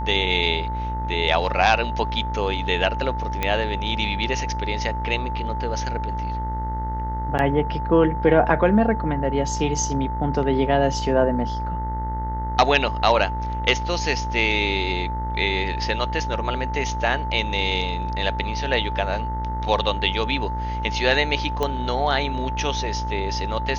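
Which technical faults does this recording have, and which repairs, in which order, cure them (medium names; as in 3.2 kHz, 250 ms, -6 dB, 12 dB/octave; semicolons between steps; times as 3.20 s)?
buzz 60 Hz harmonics 34 -28 dBFS
whine 880 Hz -28 dBFS
3.43 s: pop -8 dBFS
7.38–7.39 s: dropout 9.5 ms
21.63 s: pop -11 dBFS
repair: de-click; band-stop 880 Hz, Q 30; de-hum 60 Hz, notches 34; interpolate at 7.38 s, 9.5 ms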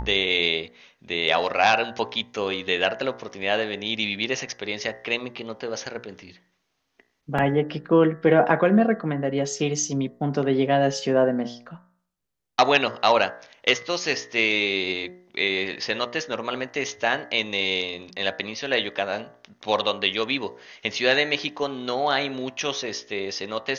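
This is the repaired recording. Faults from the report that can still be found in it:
nothing left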